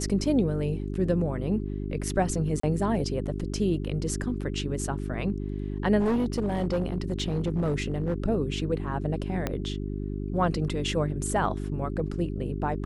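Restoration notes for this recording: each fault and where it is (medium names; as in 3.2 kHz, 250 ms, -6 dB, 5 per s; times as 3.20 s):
hum 50 Hz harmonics 8 -32 dBFS
2.60–2.63 s: dropout 34 ms
5.99–8.14 s: clipped -21.5 dBFS
9.47 s: pop -13 dBFS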